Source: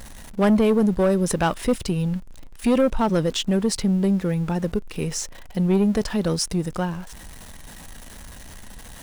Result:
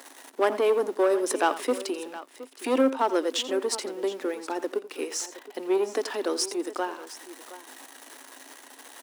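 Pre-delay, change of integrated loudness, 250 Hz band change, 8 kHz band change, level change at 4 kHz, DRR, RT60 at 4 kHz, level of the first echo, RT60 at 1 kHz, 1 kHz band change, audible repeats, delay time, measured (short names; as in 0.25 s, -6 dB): none, -5.0 dB, -11.0 dB, -2.5 dB, -2.5 dB, none, none, -15.0 dB, none, 0.0 dB, 2, 86 ms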